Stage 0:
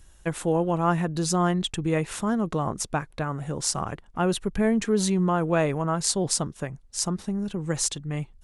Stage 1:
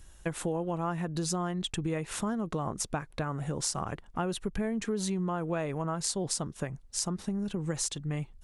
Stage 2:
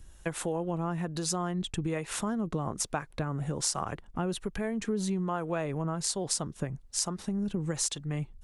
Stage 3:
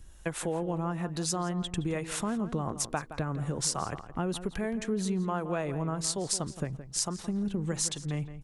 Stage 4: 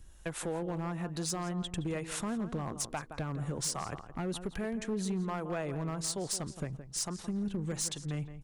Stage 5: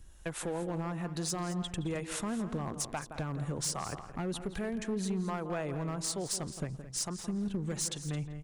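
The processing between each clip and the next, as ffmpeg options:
ffmpeg -i in.wav -af "acompressor=threshold=-29dB:ratio=5" out.wav
ffmpeg -i in.wav -filter_complex "[0:a]acrossover=split=430[link_01][link_02];[link_01]aeval=exprs='val(0)*(1-0.5/2+0.5/2*cos(2*PI*1.2*n/s))':channel_layout=same[link_03];[link_02]aeval=exprs='val(0)*(1-0.5/2-0.5/2*cos(2*PI*1.2*n/s))':channel_layout=same[link_04];[link_03][link_04]amix=inputs=2:normalize=0,volume=2.5dB" out.wav
ffmpeg -i in.wav -filter_complex "[0:a]asplit=2[link_01][link_02];[link_02]adelay=169,lowpass=frequency=3000:poles=1,volume=-12dB,asplit=2[link_03][link_04];[link_04]adelay=169,lowpass=frequency=3000:poles=1,volume=0.25,asplit=2[link_05][link_06];[link_06]adelay=169,lowpass=frequency=3000:poles=1,volume=0.25[link_07];[link_01][link_03][link_05][link_07]amix=inputs=4:normalize=0" out.wav
ffmpeg -i in.wav -af "volume=25dB,asoftclip=hard,volume=-25dB,volume=-3dB" out.wav
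ffmpeg -i in.wav -af "aecho=1:1:216:0.2" out.wav

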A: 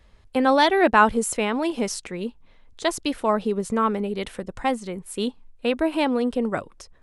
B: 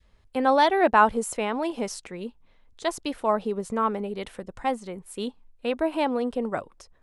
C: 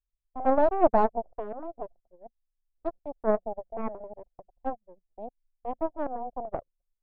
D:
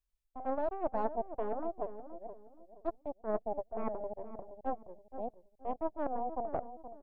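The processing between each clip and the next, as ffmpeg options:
ffmpeg -i in.wav -af "adynamicequalizer=threshold=0.0316:dfrequency=770:dqfactor=0.9:tfrequency=770:tqfactor=0.9:attack=5:release=100:ratio=0.375:range=3:mode=boostabove:tftype=bell,volume=-6dB" out.wav
ffmpeg -i in.wav -af "aeval=exprs='0.531*(cos(1*acos(clip(val(0)/0.531,-1,1)))-cos(1*PI/2))+0.237*(cos(6*acos(clip(val(0)/0.531,-1,1)))-cos(6*PI/2))+0.0596*(cos(7*acos(clip(val(0)/0.531,-1,1)))-cos(7*PI/2))+0.0422*(cos(8*acos(clip(val(0)/0.531,-1,1)))-cos(8*PI/2))':channel_layout=same,lowpass=frequency=690:width_type=q:width=3.5,anlmdn=6.31,volume=-8dB" out.wav
ffmpeg -i in.wav -filter_complex "[0:a]areverse,acompressor=threshold=-32dB:ratio=6,areverse,asplit=2[link_01][link_02];[link_02]adelay=473,lowpass=frequency=810:poles=1,volume=-9.5dB,asplit=2[link_03][link_04];[link_04]adelay=473,lowpass=frequency=810:poles=1,volume=0.36,asplit=2[link_05][link_06];[link_06]adelay=473,lowpass=frequency=810:poles=1,volume=0.36,asplit=2[link_07][link_08];[link_08]adelay=473,lowpass=frequency=810:poles=1,volume=0.36[link_09];[link_01][link_03][link_05][link_07][link_09]amix=inputs=5:normalize=0,volume=1dB" out.wav

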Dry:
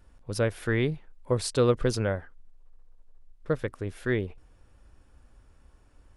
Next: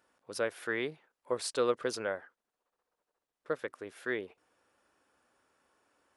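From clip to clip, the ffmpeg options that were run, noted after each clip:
ffmpeg -i in.wav -af "highpass=380,equalizer=frequency=1400:width=1.5:gain=2.5,volume=-4.5dB" out.wav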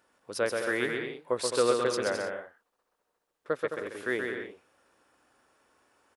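ffmpeg -i in.wav -af "aecho=1:1:130|214.5|269.4|305.1|328.3:0.631|0.398|0.251|0.158|0.1,volume=3.5dB" out.wav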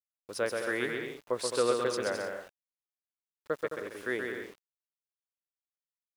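ffmpeg -i in.wav -filter_complex "[0:a]asplit=2[link_01][link_02];[link_02]adelay=400,highpass=300,lowpass=3400,asoftclip=type=hard:threshold=-21.5dB,volume=-29dB[link_03];[link_01][link_03]amix=inputs=2:normalize=0,aeval=exprs='val(0)*gte(abs(val(0)),0.00422)':channel_layout=same,volume=-2.5dB" out.wav

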